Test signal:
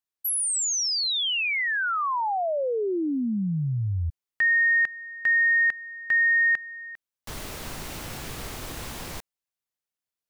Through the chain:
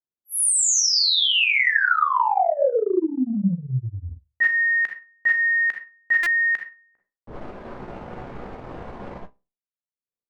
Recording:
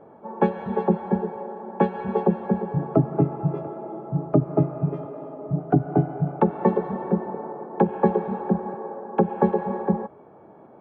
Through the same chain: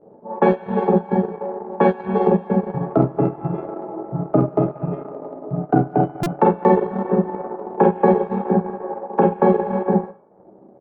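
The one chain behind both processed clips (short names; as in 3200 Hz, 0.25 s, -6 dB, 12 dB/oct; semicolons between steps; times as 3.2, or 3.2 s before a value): low shelf 220 Hz -8 dB; Schroeder reverb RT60 0.33 s, combs from 31 ms, DRR -1.5 dB; low-pass opened by the level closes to 410 Hz, open at -18 dBFS; doubler 16 ms -9 dB; transient shaper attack +2 dB, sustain -10 dB; stuck buffer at 6.23, samples 128, times 10; gain +2.5 dB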